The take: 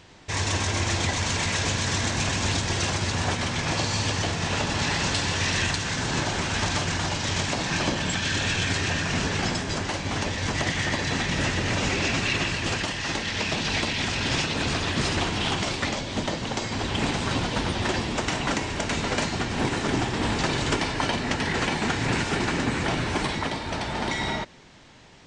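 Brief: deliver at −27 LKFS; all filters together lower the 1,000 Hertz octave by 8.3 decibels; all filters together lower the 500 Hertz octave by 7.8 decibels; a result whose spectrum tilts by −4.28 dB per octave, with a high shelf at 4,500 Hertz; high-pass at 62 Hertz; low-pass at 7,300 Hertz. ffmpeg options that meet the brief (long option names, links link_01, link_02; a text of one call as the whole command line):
ffmpeg -i in.wav -af "highpass=62,lowpass=7300,equalizer=frequency=500:width_type=o:gain=-8.5,equalizer=frequency=1000:width_type=o:gain=-7.5,highshelf=frequency=4500:gain=-8,volume=2dB" out.wav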